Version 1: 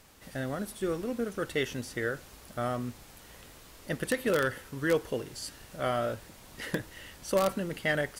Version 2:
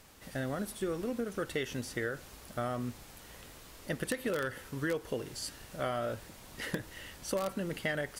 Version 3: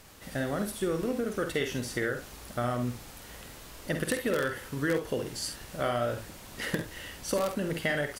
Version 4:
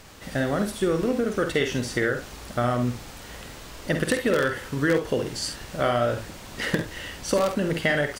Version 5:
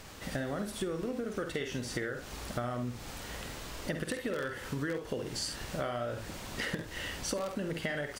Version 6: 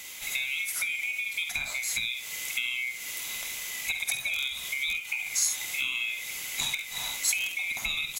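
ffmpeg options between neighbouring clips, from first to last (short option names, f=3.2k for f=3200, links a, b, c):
-af "acompressor=threshold=-30dB:ratio=6"
-af "aecho=1:1:49|67:0.398|0.282,volume=4dB"
-af "equalizer=f=12k:t=o:w=0.63:g=-9.5,volume=6.5dB"
-af "acompressor=threshold=-31dB:ratio=6,volume=-1.5dB"
-af "afftfilt=real='real(if(lt(b,920),b+92*(1-2*mod(floor(b/92),2)),b),0)':imag='imag(if(lt(b,920),b+92*(1-2*mod(floor(b/92),2)),b),0)':win_size=2048:overlap=0.75,crystalizer=i=4.5:c=0,volume=-2.5dB"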